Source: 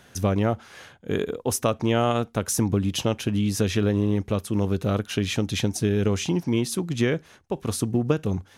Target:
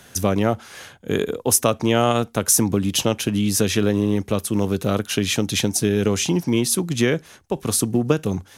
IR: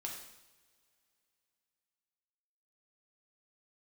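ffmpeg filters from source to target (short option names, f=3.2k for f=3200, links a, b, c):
-filter_complex "[0:a]equalizer=f=13k:t=o:w=1.8:g=8.5,acrossover=split=130|2700[a][b][c];[a]alimiter=level_in=8dB:limit=-24dB:level=0:latency=1:release=364,volume=-8dB[d];[d][b][c]amix=inputs=3:normalize=0,volume=4dB"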